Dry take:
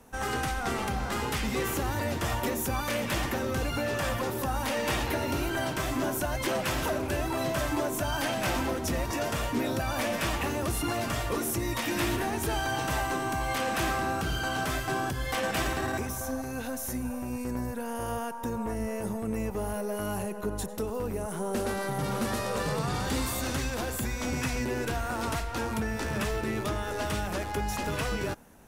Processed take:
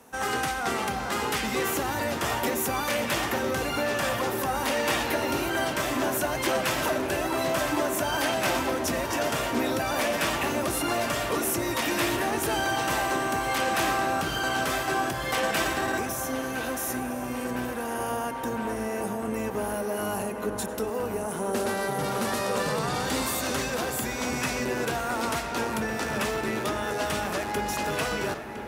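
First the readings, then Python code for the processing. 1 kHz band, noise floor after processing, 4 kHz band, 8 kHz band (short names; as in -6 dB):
+4.5 dB, -32 dBFS, +4.5 dB, +4.0 dB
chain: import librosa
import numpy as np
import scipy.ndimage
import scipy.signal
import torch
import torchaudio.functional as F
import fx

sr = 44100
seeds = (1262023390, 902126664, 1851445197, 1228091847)

y = fx.highpass(x, sr, hz=270.0, slope=6)
y = fx.echo_filtered(y, sr, ms=1010, feedback_pct=80, hz=4400.0, wet_db=-11.0)
y = y * librosa.db_to_amplitude(4.0)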